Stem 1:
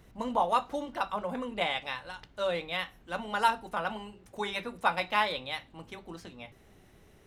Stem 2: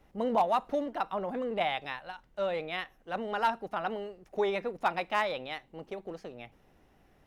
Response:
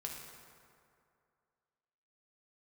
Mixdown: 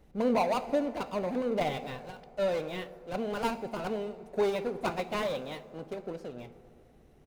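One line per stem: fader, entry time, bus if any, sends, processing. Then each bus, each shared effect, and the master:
-9.5 dB, 0.00 s, no send, none
+0.5 dB, 0.5 ms, send -3 dB, median filter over 41 samples; peaking EQ 1.8 kHz -5.5 dB 0.54 oct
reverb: on, RT60 2.4 s, pre-delay 3 ms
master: none

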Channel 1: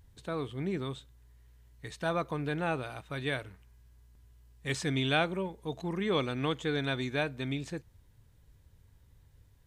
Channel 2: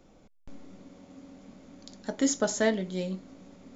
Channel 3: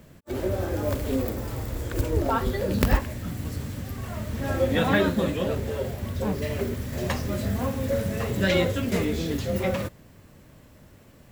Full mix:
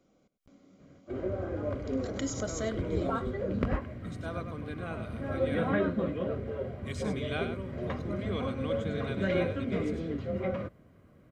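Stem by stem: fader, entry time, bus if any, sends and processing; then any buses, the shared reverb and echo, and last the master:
-7.5 dB, 2.20 s, no send, echo send -7.5 dB, none
-8.5 dB, 0.00 s, no send, echo send -16 dB, swell ahead of each attack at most 140 dB/s
-5.5 dB, 0.80 s, no send, no echo send, low-pass 1.9 kHz 12 dB/octave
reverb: none
echo: delay 100 ms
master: comb of notches 880 Hz

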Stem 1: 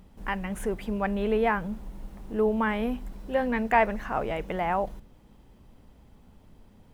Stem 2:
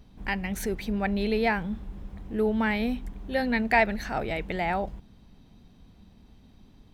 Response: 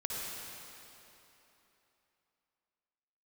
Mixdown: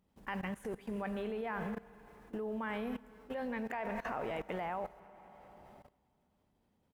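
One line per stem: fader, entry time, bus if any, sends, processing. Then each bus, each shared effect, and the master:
-3.5 dB, 0.00 s, send -13 dB, none
-17.5 dB, 21 ms, no send, peaking EQ 410 Hz -9.5 dB 2.7 oct; harmonic tremolo 3.4 Hz, crossover 650 Hz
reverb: on, RT60 3.3 s, pre-delay 51 ms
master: high-pass 140 Hz 6 dB/octave; level held to a coarse grid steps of 19 dB

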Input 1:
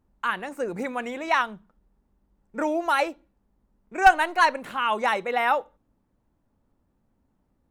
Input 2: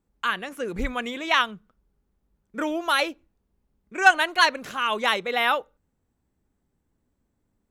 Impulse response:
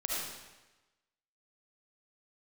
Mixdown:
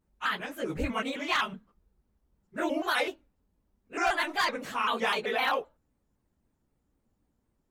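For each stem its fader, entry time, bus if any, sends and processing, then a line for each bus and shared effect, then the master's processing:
-10.0 dB, 0.00 s, no send, none
-3.0 dB, 0.00 s, no send, phase randomisation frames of 50 ms; overload inside the chain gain 13.5 dB; vibrato with a chosen wave square 3.9 Hz, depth 160 cents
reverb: none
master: peak limiter -18.5 dBFS, peak gain reduction 8 dB

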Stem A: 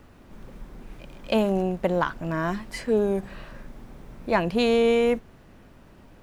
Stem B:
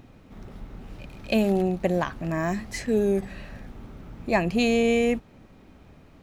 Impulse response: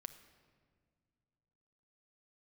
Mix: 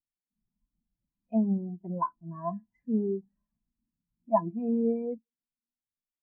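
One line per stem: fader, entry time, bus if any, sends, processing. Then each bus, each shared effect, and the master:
-15.0 dB, 0.00 s, no send, de-hum 46.67 Hz, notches 8
-1.5 dB, 2.4 ms, polarity flipped, send -7 dB, low-pass that closes with the level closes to 1.6 kHz, closed at -18 dBFS; feedback comb 340 Hz, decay 0.27 s, harmonics all, mix 70%; vibrato 2.2 Hz 14 cents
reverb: on, pre-delay 6 ms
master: graphic EQ 250/500/1000/4000 Hz +4/-4/+11/-7 dB; modulation noise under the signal 13 dB; spectral contrast expander 2.5:1

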